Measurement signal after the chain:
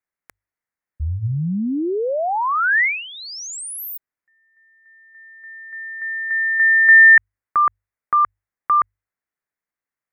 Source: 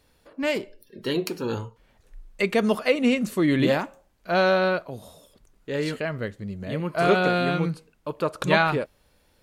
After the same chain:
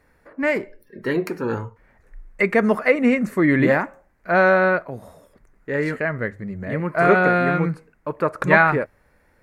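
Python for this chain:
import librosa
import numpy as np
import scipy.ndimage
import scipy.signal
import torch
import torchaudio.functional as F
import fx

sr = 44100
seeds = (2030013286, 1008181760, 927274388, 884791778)

y = fx.high_shelf_res(x, sr, hz=2500.0, db=-8.5, q=3.0)
y = fx.hum_notches(y, sr, base_hz=50, count=2)
y = y * librosa.db_to_amplitude(3.5)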